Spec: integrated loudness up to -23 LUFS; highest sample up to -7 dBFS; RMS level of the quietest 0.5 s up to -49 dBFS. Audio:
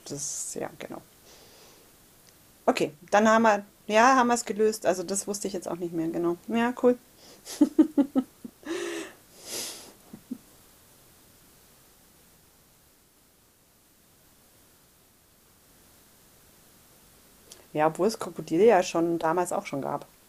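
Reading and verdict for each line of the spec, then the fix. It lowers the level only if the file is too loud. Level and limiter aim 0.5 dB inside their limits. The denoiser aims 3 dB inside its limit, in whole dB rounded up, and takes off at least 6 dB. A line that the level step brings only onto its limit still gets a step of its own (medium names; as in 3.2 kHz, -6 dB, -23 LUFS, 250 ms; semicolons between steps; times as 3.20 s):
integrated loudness -26.0 LUFS: pass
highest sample -6.5 dBFS: fail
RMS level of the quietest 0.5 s -61 dBFS: pass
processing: peak limiter -7.5 dBFS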